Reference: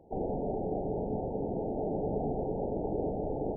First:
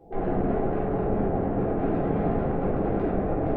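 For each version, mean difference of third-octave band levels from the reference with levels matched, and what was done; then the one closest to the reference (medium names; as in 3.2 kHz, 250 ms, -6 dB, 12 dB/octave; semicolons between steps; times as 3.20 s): 6.5 dB: saturation -32 dBFS, distortion -12 dB; simulated room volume 330 m³, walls mixed, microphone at 3.7 m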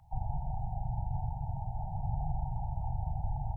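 9.5 dB: inverse Chebyshev band-stop 230–540 Hz, stop band 50 dB; trim +8.5 dB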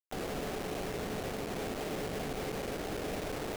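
18.5 dB: peak limiter -27 dBFS, peak gain reduction 5.5 dB; bit crusher 6-bit; trim -3 dB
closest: first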